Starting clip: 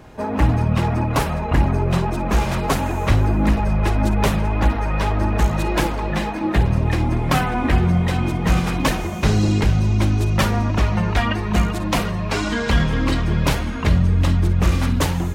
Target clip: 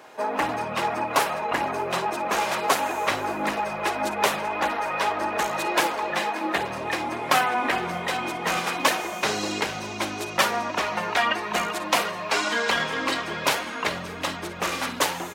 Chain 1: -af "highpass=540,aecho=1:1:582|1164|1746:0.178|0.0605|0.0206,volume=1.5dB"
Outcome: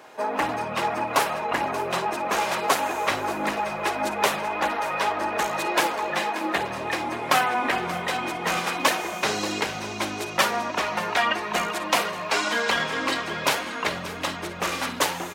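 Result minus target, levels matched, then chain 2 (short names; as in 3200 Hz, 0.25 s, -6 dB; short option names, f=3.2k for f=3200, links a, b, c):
echo-to-direct +7.5 dB
-af "highpass=540,aecho=1:1:582|1164:0.075|0.0255,volume=1.5dB"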